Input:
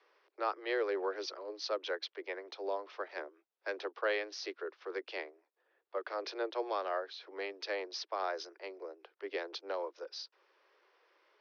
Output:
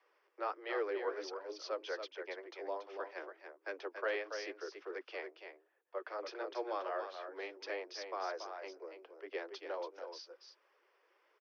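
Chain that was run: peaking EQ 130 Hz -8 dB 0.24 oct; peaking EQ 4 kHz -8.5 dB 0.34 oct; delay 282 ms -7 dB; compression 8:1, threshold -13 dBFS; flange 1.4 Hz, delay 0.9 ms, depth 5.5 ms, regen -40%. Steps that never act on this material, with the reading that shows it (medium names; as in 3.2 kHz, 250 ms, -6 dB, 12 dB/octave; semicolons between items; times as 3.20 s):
peaking EQ 130 Hz: input has nothing below 270 Hz; compression, threshold -13 dBFS: peak at its input -20.5 dBFS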